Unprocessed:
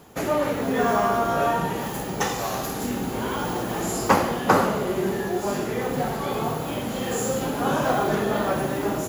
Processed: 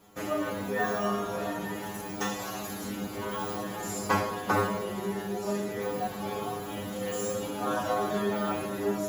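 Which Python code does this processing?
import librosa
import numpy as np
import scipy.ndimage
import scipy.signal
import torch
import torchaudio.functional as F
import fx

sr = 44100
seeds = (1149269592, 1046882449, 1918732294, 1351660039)

y = fx.stiff_resonator(x, sr, f0_hz=100.0, decay_s=0.41, stiffness=0.002)
y = y * 10.0 ** (4.0 / 20.0)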